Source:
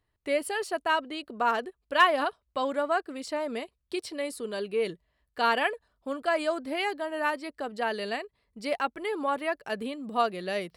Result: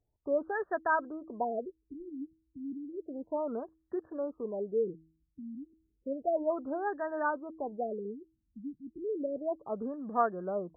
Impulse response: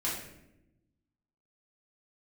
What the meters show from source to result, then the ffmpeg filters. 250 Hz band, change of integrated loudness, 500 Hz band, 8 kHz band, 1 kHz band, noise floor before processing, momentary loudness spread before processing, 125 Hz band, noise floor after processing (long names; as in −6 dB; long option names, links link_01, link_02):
−2.0 dB, −5.5 dB, −3.5 dB, below −35 dB, −7.5 dB, −78 dBFS, 11 LU, −2.0 dB, −79 dBFS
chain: -af "bandreject=frequency=160.5:width_type=h:width=4,bandreject=frequency=321:width_type=h:width=4,afftfilt=real='re*lt(b*sr/1024,310*pow(1900/310,0.5+0.5*sin(2*PI*0.32*pts/sr)))':imag='im*lt(b*sr/1024,310*pow(1900/310,0.5+0.5*sin(2*PI*0.32*pts/sr)))':win_size=1024:overlap=0.75,volume=-2dB"